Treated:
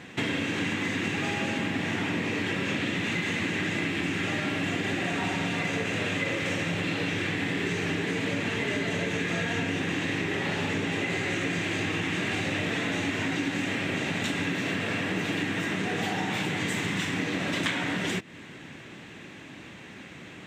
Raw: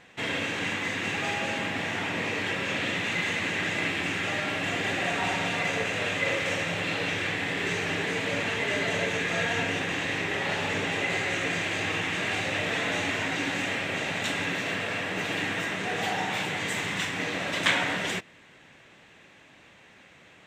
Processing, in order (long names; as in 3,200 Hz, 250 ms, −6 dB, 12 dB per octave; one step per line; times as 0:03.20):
high-pass filter 75 Hz
low shelf with overshoot 420 Hz +6 dB, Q 1.5
downward compressor, threshold −34 dBFS, peak gain reduction 14.5 dB
level +7.5 dB